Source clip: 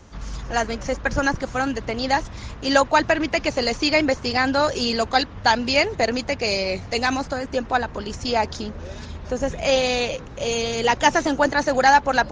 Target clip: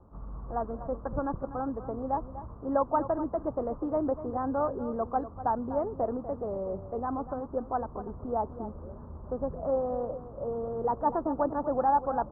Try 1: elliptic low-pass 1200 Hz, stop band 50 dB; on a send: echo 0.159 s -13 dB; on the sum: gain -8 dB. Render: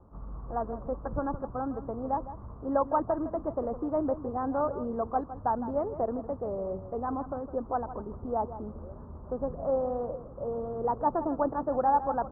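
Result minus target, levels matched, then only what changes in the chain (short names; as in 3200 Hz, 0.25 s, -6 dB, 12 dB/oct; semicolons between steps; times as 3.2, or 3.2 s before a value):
echo 86 ms early
change: echo 0.245 s -13 dB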